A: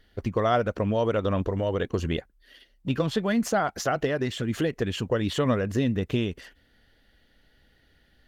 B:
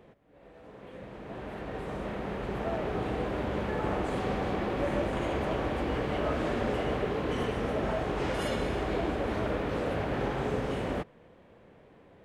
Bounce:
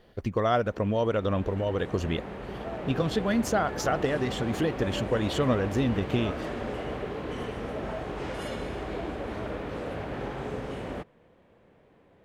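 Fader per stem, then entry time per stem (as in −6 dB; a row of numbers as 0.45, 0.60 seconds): −1.5, −3.5 decibels; 0.00, 0.00 seconds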